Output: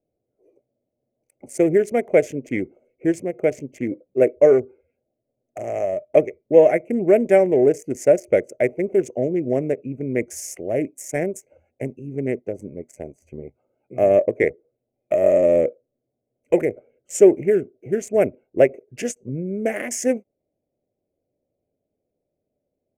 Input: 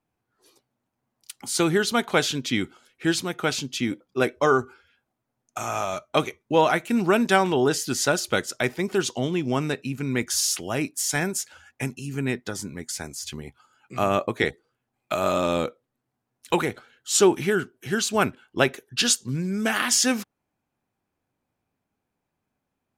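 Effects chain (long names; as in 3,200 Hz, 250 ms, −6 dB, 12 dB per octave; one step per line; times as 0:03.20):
adaptive Wiener filter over 25 samples
drawn EQ curve 220 Hz 0 dB, 600 Hz +14 dB, 900 Hz −12 dB, 1,300 Hz −17 dB, 2,100 Hz +6 dB, 3,900 Hz −29 dB, 6,300 Hz −4 dB
every ending faded ahead of time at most 560 dB per second
level −1.5 dB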